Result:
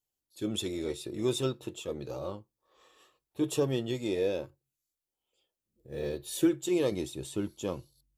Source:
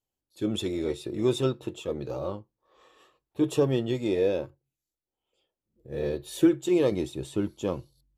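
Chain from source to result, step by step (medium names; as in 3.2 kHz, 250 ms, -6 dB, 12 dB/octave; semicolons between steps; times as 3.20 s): treble shelf 3.8 kHz +9.5 dB; trim -5 dB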